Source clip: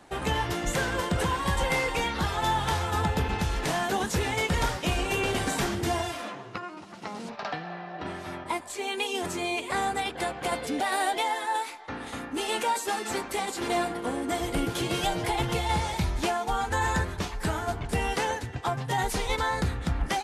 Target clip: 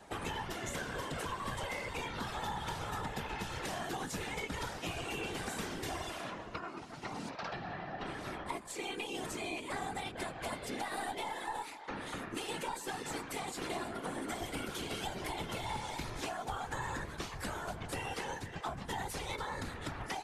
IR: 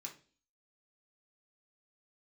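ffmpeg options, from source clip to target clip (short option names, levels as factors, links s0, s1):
-filter_complex "[0:a]afftfilt=real='hypot(re,im)*cos(2*PI*random(0))':imag='hypot(re,im)*sin(2*PI*random(1))':win_size=512:overlap=0.75,aeval=exprs='0.126*(cos(1*acos(clip(val(0)/0.126,-1,1)))-cos(1*PI/2))+0.0126*(cos(2*acos(clip(val(0)/0.126,-1,1)))-cos(2*PI/2))':c=same,acrossover=split=300|810[s0][s1][s2];[s0]acompressor=threshold=0.00398:ratio=4[s3];[s1]acompressor=threshold=0.00316:ratio=4[s4];[s2]acompressor=threshold=0.00562:ratio=4[s5];[s3][s4][s5]amix=inputs=3:normalize=0,volume=1.5"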